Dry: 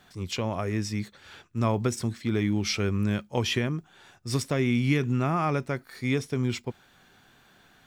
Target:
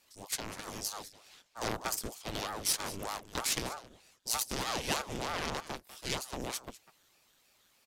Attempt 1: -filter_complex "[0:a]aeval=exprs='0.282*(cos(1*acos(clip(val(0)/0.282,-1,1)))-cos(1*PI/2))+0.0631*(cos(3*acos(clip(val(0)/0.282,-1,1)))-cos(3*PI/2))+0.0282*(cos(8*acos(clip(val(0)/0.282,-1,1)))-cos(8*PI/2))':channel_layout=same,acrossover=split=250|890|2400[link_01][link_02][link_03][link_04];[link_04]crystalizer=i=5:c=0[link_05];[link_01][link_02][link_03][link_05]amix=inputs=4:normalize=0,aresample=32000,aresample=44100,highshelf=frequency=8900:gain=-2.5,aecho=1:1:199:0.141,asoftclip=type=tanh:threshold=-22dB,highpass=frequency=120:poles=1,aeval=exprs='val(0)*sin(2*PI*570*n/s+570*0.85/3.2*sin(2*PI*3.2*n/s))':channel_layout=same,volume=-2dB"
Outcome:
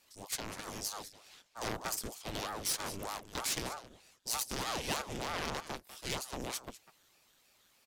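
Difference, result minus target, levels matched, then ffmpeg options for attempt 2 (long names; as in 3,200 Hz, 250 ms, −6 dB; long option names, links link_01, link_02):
soft clipping: distortion +10 dB
-filter_complex "[0:a]aeval=exprs='0.282*(cos(1*acos(clip(val(0)/0.282,-1,1)))-cos(1*PI/2))+0.0631*(cos(3*acos(clip(val(0)/0.282,-1,1)))-cos(3*PI/2))+0.0282*(cos(8*acos(clip(val(0)/0.282,-1,1)))-cos(8*PI/2))':channel_layout=same,acrossover=split=250|890|2400[link_01][link_02][link_03][link_04];[link_04]crystalizer=i=5:c=0[link_05];[link_01][link_02][link_03][link_05]amix=inputs=4:normalize=0,aresample=32000,aresample=44100,highshelf=frequency=8900:gain=-2.5,aecho=1:1:199:0.141,asoftclip=type=tanh:threshold=-13.5dB,highpass=frequency=120:poles=1,aeval=exprs='val(0)*sin(2*PI*570*n/s+570*0.85/3.2*sin(2*PI*3.2*n/s))':channel_layout=same,volume=-2dB"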